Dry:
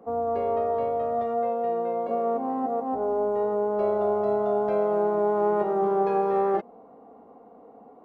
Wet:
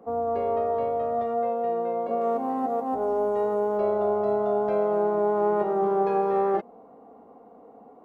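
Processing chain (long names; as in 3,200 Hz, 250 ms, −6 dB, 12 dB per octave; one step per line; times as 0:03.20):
0:02.21–0:03.78: high-shelf EQ 2,400 Hz +9 dB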